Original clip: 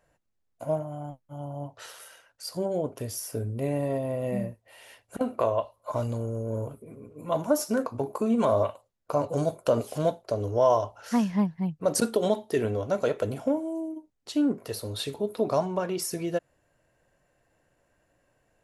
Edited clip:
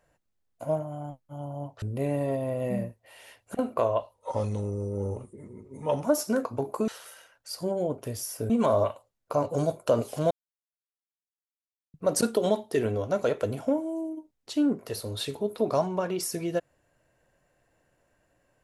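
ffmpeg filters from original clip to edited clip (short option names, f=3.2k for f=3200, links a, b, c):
-filter_complex "[0:a]asplit=8[a][b][c][d][e][f][g][h];[a]atrim=end=1.822[i];[b]atrim=start=3.438:end=5.764[j];[c]atrim=start=5.76:end=7.45,asetpts=PTS-STARTPTS,asetrate=39249,aresample=44100,atrim=end_sample=83740,asetpts=PTS-STARTPTS[k];[d]atrim=start=7.446:end=8.292[l];[e]atrim=start=1.818:end=3.442[m];[f]atrim=start=8.288:end=10.1,asetpts=PTS-STARTPTS,afade=t=out:st=1.808:d=0.004:c=hsin[n];[g]atrim=start=10.1:end=11.73,asetpts=PTS-STARTPTS,volume=0[o];[h]atrim=start=11.73,asetpts=PTS-STARTPTS,afade=t=in:d=0.004:c=hsin[p];[i][j]acrossfade=d=0.004:c1=hsin:c2=hsin[q];[q][k]acrossfade=d=0.004:c1=hsin:c2=hsin[r];[r][l]acrossfade=d=0.004:c1=hsin:c2=hsin[s];[s][m]acrossfade=d=0.004:c1=hsin:c2=hsin[t];[n][o][p]concat=n=3:v=0:a=1[u];[t][u]acrossfade=d=0.004:c1=hsin:c2=hsin"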